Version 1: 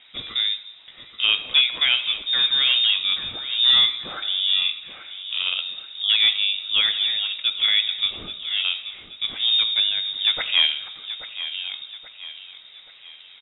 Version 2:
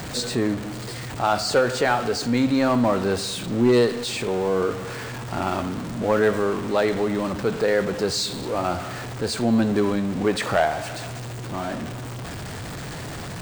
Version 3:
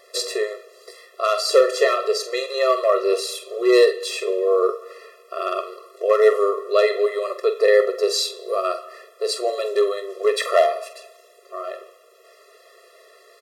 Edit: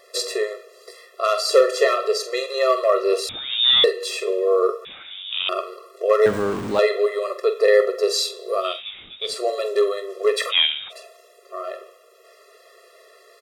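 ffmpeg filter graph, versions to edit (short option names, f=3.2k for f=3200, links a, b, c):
-filter_complex "[0:a]asplit=4[a][b][c][d];[2:a]asplit=6[e][f][g][h][i][j];[e]atrim=end=3.292[k];[a]atrim=start=3.288:end=3.842[l];[f]atrim=start=3.838:end=4.852[m];[b]atrim=start=4.848:end=5.492[n];[g]atrim=start=5.488:end=6.262[o];[1:a]atrim=start=6.258:end=6.792[p];[h]atrim=start=6.788:end=8.84[q];[c]atrim=start=8.6:end=9.41[r];[i]atrim=start=9.17:end=10.53[s];[d]atrim=start=10.49:end=10.93[t];[j]atrim=start=10.89[u];[k][l]acrossfade=d=0.004:c1=hsin:c2=hsin[v];[v][m]acrossfade=d=0.004:c1=hsin:c2=hsin[w];[w][n]acrossfade=d=0.004:c1=hsin:c2=hsin[x];[x][o]acrossfade=d=0.004:c1=hsin:c2=hsin[y];[y][p]acrossfade=d=0.004:c1=hsin:c2=hsin[z];[z][q]acrossfade=d=0.004:c1=hsin:c2=hsin[aa];[aa][r]acrossfade=d=0.24:c1=tri:c2=tri[ab];[ab][s]acrossfade=d=0.24:c1=tri:c2=tri[ac];[ac][t]acrossfade=d=0.04:c1=tri:c2=tri[ad];[ad][u]acrossfade=d=0.04:c1=tri:c2=tri"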